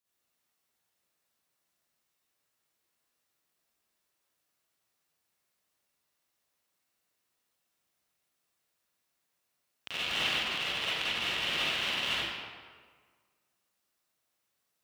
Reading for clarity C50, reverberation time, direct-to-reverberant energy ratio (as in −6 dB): −7.0 dB, 1.7 s, −11.5 dB